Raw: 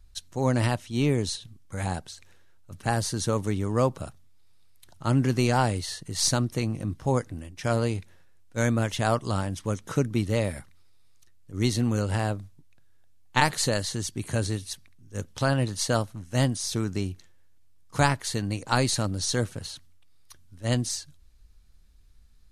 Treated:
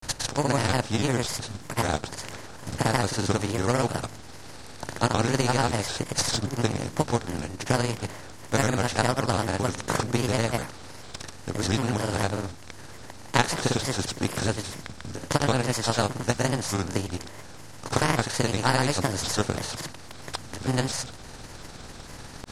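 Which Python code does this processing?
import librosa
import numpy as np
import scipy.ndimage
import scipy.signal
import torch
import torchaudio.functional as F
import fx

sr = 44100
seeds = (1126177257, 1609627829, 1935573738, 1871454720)

y = fx.bin_compress(x, sr, power=0.4)
y = fx.granulator(y, sr, seeds[0], grain_ms=100.0, per_s=20.0, spray_ms=100.0, spread_st=3)
y = fx.transient(y, sr, attack_db=6, sustain_db=-2)
y = y * 10.0 ** (-5.5 / 20.0)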